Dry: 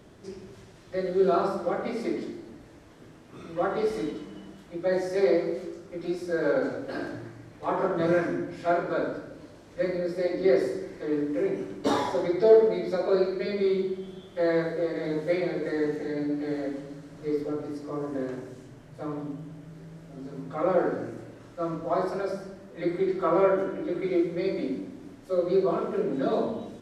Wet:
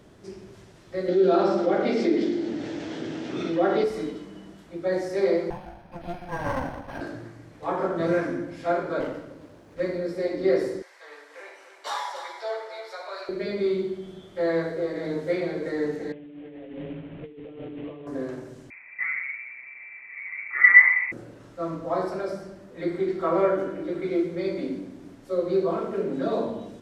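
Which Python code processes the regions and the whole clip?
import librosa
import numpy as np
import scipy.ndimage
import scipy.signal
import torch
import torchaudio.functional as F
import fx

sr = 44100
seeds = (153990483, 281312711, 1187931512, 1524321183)

y = fx.chain(x, sr, fx.cabinet(low_hz=170.0, low_slope=12, high_hz=6400.0, hz=(320.0, 1100.0, 3300.0), db=(6, -9, 4)),
    fx.env_flatten(amount_pct=50), at=(1.08, 3.84))
y = fx.chain(y, sr, fx.lower_of_two(delay_ms=1.2),
    fx.resample_linear(factor=6), at=(5.5, 7.01))
y = fx.chain(y, sr, fx.highpass(hz=45.0, slope=12),
    fx.running_max(window=9), at=(9.0, 9.8))
y = fx.chain(y, sr, fx.highpass(hz=790.0, slope=24),
    fx.echo_single(ms=287, db=-10.0), at=(10.82, 13.29))
y = fx.chain(y, sr, fx.cvsd(bps=16000),
    fx.over_compress(threshold_db=-39.0, ratio=-1.0),
    fx.dynamic_eq(hz=1300.0, q=1.2, threshold_db=-59.0, ratio=4.0, max_db=-8), at=(16.12, 18.07))
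y = fx.chain(y, sr, fx.median_filter(points=15),
    fx.peak_eq(hz=500.0, db=15.0, octaves=0.35),
    fx.freq_invert(carrier_hz=2500), at=(18.7, 21.12))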